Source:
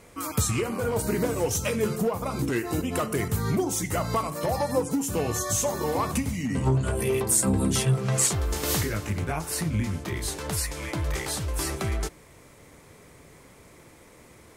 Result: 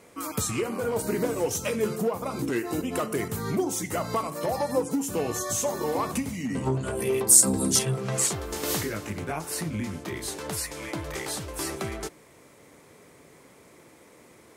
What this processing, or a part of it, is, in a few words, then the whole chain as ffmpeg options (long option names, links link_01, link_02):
filter by subtraction: -filter_complex "[0:a]asettb=1/sr,asplit=3[link_01][link_02][link_03];[link_01]atrim=end=7.284[link_04];[link_02]atrim=start=7.28:end=7.79,asetpts=PTS-STARTPTS,afade=type=in:duration=0.004:curve=qsin,afade=type=out:start_time=0.506:duration=0.004:curve=qsin,highshelf=frequency=3800:width_type=q:width=1.5:gain=8[link_05];[link_03]atrim=start=7.786[link_06];[link_04][link_05]acrossfade=duration=0.004:curve1=hsin:curve2=qsin[link_07];[link_07][link_06]acrossfade=duration=0.004:curve1=qsin:curve2=hsin,asplit=2[link_08][link_09];[link_09]lowpass=300,volume=-1[link_10];[link_08][link_10]amix=inputs=2:normalize=0,volume=-2dB"